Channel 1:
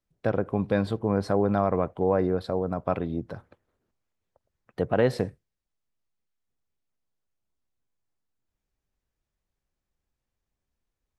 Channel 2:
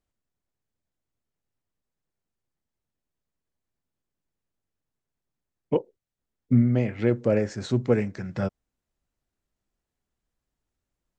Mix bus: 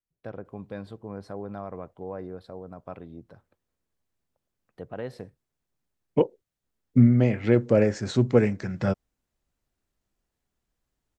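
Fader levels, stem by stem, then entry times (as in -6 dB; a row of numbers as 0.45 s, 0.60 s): -13.0 dB, +2.5 dB; 0.00 s, 0.45 s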